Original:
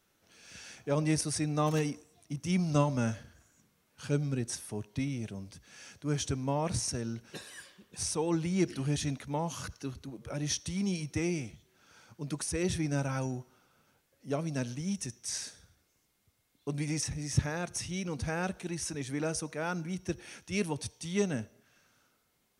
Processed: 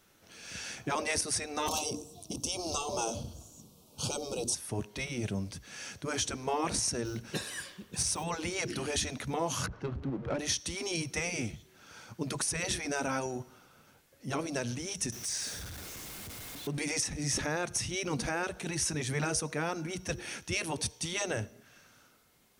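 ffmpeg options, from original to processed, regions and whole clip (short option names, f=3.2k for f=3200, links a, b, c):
-filter_complex "[0:a]asettb=1/sr,asplit=3[a][b][c];[a]atrim=end=1.684[d];[b]atrim=start=1.68:end=4.55,asetpts=PTS-STARTPTS,afade=t=in:d=0.004:c=qsin,afade=t=out:st=2.866:d=0.004:c=qsin,acontrast=53,asuperstop=centerf=1800:order=4:qfactor=0.77[e];[c]atrim=start=4.546[f];[d][e]acrossfade=d=0.004:c1=hsin:c2=qsin[g];[g][f]acrossfade=d=0.004:c1=qsin:c2=hsin,asettb=1/sr,asplit=3[h][i][j];[h]atrim=end=7.054[k];[i]atrim=start=7.05:end=8.24,asetpts=PTS-STARTPTS,afade=t=in:d=0.004:c=qsin,afade=t=out:st=1.186:d=0.004:c=qsin,acrusher=bits=8:mode=log:mix=0:aa=0.000001,bass=f=250:g=4,treble=f=4k:g=1[l];[j]atrim=start=8.236[m];[k][l]acrossfade=d=0.004:c1=hsin:c2=qsin[n];[n][m]acrossfade=d=0.004:c1=qsin:c2=hsin,asettb=1/sr,asplit=3[o][p][q];[o]atrim=end=9.664[r];[p]atrim=start=9.66:end=10.39,asetpts=PTS-STARTPTS,afade=t=in:d=0.004:c=qsin,afade=t=out:st=0.726:d=0.004:c=qsin,aeval=exprs='val(0)+0.5*0.00398*sgn(val(0))':c=same,lowpass=9.5k,adynamicsmooth=sensitivity=5.5:basefreq=1.1k[s];[q]atrim=start=10.386[t];[r][s]acrossfade=d=0.004:c1=hsin:c2=qsin[u];[u][t]acrossfade=d=0.004:c1=qsin:c2=hsin,asettb=1/sr,asplit=3[v][w][x];[v]atrim=end=15.124[y];[w]atrim=start=15.12:end=16.78,asetpts=PTS-STARTPTS,afade=t=in:d=0.004:c=qsin,afade=t=out:st=1.656:d=0.004:c=qsin,aeval=exprs='val(0)+0.5*0.00501*sgn(val(0))':c=same,acompressor=threshold=-42dB:ratio=2.5:attack=3.2:release=140:knee=1:detection=peak[z];[x]atrim=start=16.776[aa];[y][z]acrossfade=d=0.004:c1=hsin:c2=qsin[ab];[ab][aa]acrossfade=d=0.004:c1=qsin:c2=hsin,afftfilt=real='re*lt(hypot(re,im),0.126)':imag='im*lt(hypot(re,im),0.126)':win_size=1024:overlap=0.75,acontrast=52,alimiter=limit=-21.5dB:level=0:latency=1:release=293,volume=1.5dB"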